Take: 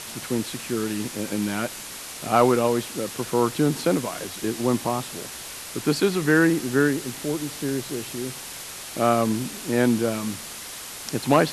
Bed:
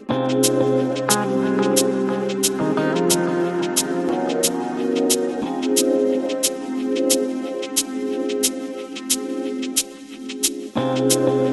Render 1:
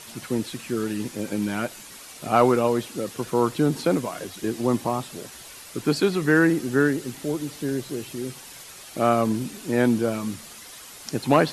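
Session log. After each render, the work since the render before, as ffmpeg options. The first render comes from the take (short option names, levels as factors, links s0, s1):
-af "afftdn=nr=8:nf=-37"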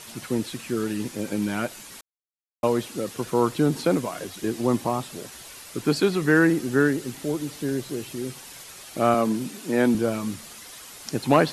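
-filter_complex "[0:a]asettb=1/sr,asplit=3[s0][s1][s2];[s0]atrim=end=9.144[s3];[s1]atrim=start=9.14:end=9.95,asetpts=PTS-STARTPTS,afade=t=in:d=0.004:c=qsin,afade=t=out:st=0.806:d=0.004:c=qsin,highpass=f=140:w=0.5412,highpass=f=140:w=1.3066[s4];[s2]atrim=start=9.946[s5];[s3][s4]acrossfade=d=0.004:c1=hsin:c2=qsin[s6];[s6][s5]acrossfade=d=0.004:c1=qsin:c2=hsin,asplit=3[s7][s8][s9];[s7]atrim=end=2.01,asetpts=PTS-STARTPTS,afade=t=out:st=2.006:d=0.004:c=hsin[s10];[s8]atrim=start=2.01:end=2.63,asetpts=PTS-STARTPTS,volume=0[s11];[s9]atrim=start=2.63,asetpts=PTS-STARTPTS,afade=t=in:d=0.004:c=hsin[s12];[s10][s11][s12]concat=n=3:v=0:a=1"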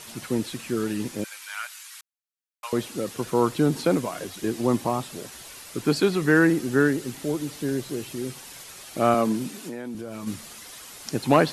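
-filter_complex "[0:a]asettb=1/sr,asplit=3[s0][s1][s2];[s0]atrim=end=1.244[s3];[s1]atrim=start=1.24:end=2.73,asetpts=PTS-STARTPTS,afade=t=in:d=0.004:c=qsin,afade=t=out:st=1.486:d=0.004:c=qsin,highpass=f=1200:w=0.5412,highpass=f=1200:w=1.3066[s4];[s2]atrim=start=2.726[s5];[s3][s4]acrossfade=d=0.004:c1=hsin:c2=qsin[s6];[s6][s5]acrossfade=d=0.004:c1=qsin:c2=hsin,asplit=3[s7][s8][s9];[s7]afade=t=out:st=9.64:d=0.02[s10];[s8]acompressor=threshold=0.0282:ratio=8:attack=3.2:release=140:knee=1:detection=peak,afade=t=in:st=9.64:d=0.02,afade=t=out:st=10.26:d=0.02[s11];[s9]afade=t=in:st=10.26:d=0.02[s12];[s10][s11][s12]amix=inputs=3:normalize=0"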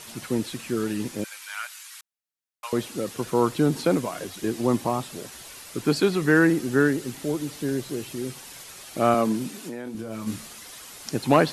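-filter_complex "[0:a]asettb=1/sr,asplit=3[s0][s1][s2];[s0]atrim=end=9.844[s3];[s1]atrim=start=9.84:end=10.47,asetpts=PTS-STARTPTS,afade=t=in:d=0.004:c=qsin,afade=t=out:st=0.626:d=0.004:c=qsin,asplit=2[s4][s5];[s5]adelay=27,volume=0.501[s6];[s4][s6]amix=inputs=2:normalize=0,atrim=end_sample=27783[s7];[s2]atrim=start=10.466[s8];[s3][s7]acrossfade=d=0.004:c1=hsin:c2=qsin[s9];[s9][s8]acrossfade=d=0.004:c1=qsin:c2=hsin"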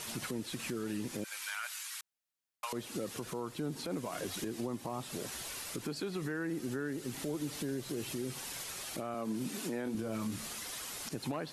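-af "acompressor=threshold=0.0282:ratio=12,alimiter=level_in=1.58:limit=0.0631:level=0:latency=1:release=60,volume=0.631"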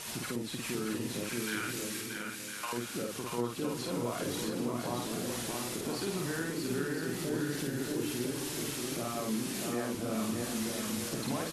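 -filter_complex "[0:a]asplit=2[s0][s1];[s1]adelay=50,volume=0.794[s2];[s0][s2]amix=inputs=2:normalize=0,asplit=2[s3][s4];[s4]aecho=0:1:630|1008|1235|1371|1453:0.631|0.398|0.251|0.158|0.1[s5];[s3][s5]amix=inputs=2:normalize=0"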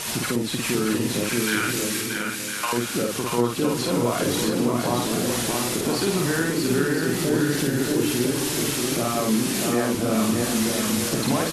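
-af "volume=3.98"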